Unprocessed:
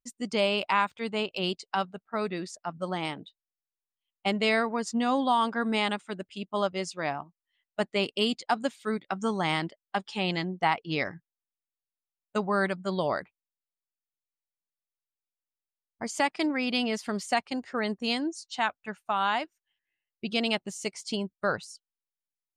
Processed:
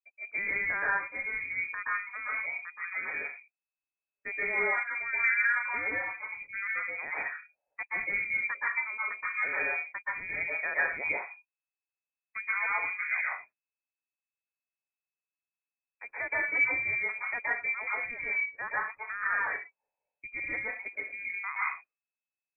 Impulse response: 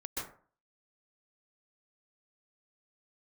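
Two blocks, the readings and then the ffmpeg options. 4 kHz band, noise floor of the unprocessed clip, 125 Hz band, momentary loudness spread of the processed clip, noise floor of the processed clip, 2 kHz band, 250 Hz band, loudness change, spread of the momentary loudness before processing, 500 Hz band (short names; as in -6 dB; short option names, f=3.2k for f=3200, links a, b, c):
under -40 dB, under -85 dBFS, under -15 dB, 11 LU, under -85 dBFS, +6.0 dB, -23.5 dB, -1.0 dB, 9 LU, -13.5 dB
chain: -filter_complex "[1:a]atrim=start_sample=2205,afade=t=out:st=0.3:d=0.01,atrim=end_sample=13671[a];[0:a][a]afir=irnorm=-1:irlink=0,lowpass=f=2.2k:t=q:w=0.5098,lowpass=f=2.2k:t=q:w=0.6013,lowpass=f=2.2k:t=q:w=0.9,lowpass=f=2.2k:t=q:w=2.563,afreqshift=-2600,aeval=exprs='0.282*(cos(1*acos(clip(val(0)/0.282,-1,1)))-cos(1*PI/2))+0.00224*(cos(3*acos(clip(val(0)/0.282,-1,1)))-cos(3*PI/2))':c=same,volume=-4.5dB"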